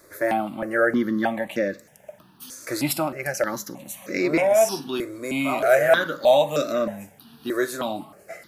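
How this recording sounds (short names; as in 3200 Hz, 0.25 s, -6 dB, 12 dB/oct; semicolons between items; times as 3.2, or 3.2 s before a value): notches that jump at a steady rate 3.2 Hz 800–3100 Hz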